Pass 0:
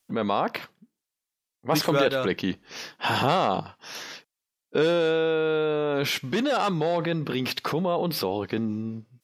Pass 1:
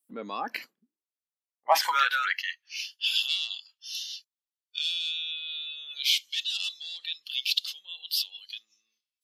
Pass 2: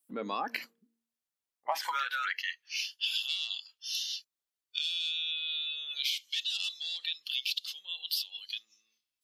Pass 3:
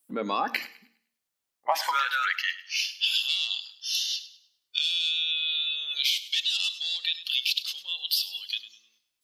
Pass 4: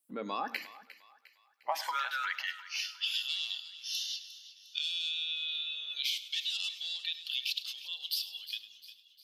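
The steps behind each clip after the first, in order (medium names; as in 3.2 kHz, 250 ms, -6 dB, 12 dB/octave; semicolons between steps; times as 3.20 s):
high-pass sweep 260 Hz -> 3.4 kHz, 0.79–3.00 s; spectral noise reduction 17 dB
de-hum 230.9 Hz, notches 2; compression 12:1, threshold -31 dBFS, peak gain reduction 16 dB; trim +2 dB
thinning echo 102 ms, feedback 33%, high-pass 780 Hz, level -15 dB; on a send at -20 dB: reverberation RT60 0.70 s, pre-delay 3 ms; on the sum: trim +6.5 dB
thinning echo 354 ms, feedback 52%, high-pass 950 Hz, level -15 dB; trim -8 dB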